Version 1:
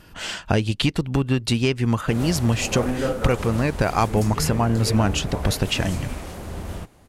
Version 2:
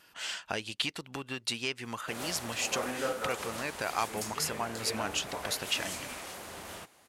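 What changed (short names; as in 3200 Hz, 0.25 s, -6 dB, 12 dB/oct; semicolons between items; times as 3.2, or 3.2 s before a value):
speech -5.5 dB; master: add HPF 1300 Hz 6 dB/oct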